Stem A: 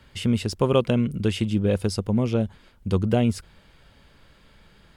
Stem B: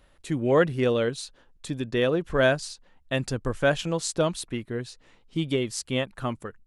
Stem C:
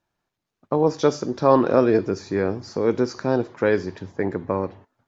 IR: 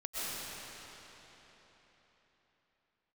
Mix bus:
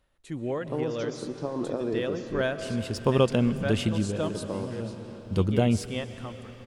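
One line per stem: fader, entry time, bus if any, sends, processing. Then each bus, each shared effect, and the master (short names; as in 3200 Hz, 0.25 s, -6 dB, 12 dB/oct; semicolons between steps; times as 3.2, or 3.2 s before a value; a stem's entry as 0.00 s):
-2.5 dB, 2.45 s, send -20.5 dB, auto duck -15 dB, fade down 0.25 s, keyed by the third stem
-5.5 dB, 0.00 s, send -13 dB, noise-modulated level
-10.0 dB, 0.00 s, muted 2.42–4.23, send -13.5 dB, bell 1800 Hz -10 dB 2.1 oct; negative-ratio compressor -19 dBFS, ratio -0.5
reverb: on, RT60 4.1 s, pre-delay 85 ms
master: dry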